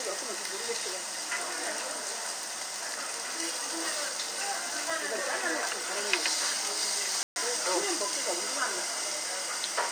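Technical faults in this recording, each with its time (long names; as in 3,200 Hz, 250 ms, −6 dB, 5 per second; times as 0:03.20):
0:04.90: drop-out 2.9 ms
0:07.23–0:07.36: drop-out 131 ms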